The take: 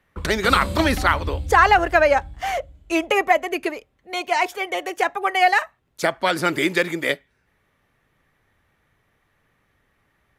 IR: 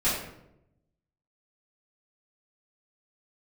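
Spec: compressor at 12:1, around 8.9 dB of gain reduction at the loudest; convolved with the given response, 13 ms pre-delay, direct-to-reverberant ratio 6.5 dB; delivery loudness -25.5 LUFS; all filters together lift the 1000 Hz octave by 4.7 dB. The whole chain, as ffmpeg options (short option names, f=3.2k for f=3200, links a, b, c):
-filter_complex "[0:a]equalizer=f=1k:t=o:g=6.5,acompressor=threshold=-14dB:ratio=12,asplit=2[a][b];[1:a]atrim=start_sample=2205,adelay=13[c];[b][c]afir=irnorm=-1:irlink=0,volume=-18.5dB[d];[a][d]amix=inputs=2:normalize=0,volume=-4.5dB"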